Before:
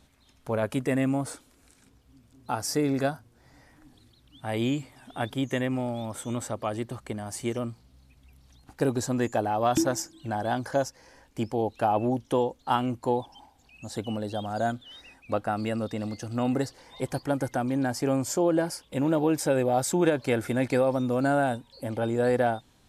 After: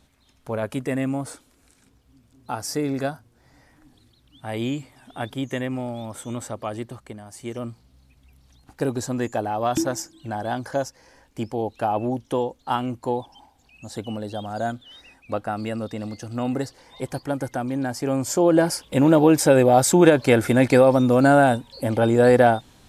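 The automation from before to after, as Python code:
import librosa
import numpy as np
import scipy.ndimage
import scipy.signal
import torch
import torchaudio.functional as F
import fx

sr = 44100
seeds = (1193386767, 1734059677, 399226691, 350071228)

y = fx.gain(x, sr, db=fx.line((6.82, 0.5), (7.31, -6.5), (7.66, 1.0), (18.03, 1.0), (18.7, 9.0)))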